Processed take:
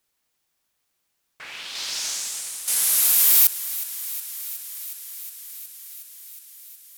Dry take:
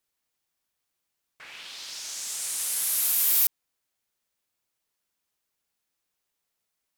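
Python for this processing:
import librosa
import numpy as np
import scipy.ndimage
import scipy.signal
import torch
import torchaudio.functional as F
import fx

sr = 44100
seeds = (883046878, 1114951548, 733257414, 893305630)

p1 = x + fx.echo_thinned(x, sr, ms=365, feedback_pct=80, hz=500.0, wet_db=-15, dry=0)
p2 = fx.over_compress(p1, sr, threshold_db=-37.0, ratio=-1.0, at=(1.75, 2.68))
y = F.gain(torch.from_numpy(p2), 6.5).numpy()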